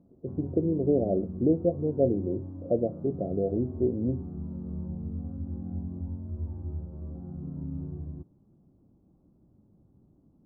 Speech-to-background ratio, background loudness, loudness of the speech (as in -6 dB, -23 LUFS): 10.0 dB, -38.5 LUFS, -28.5 LUFS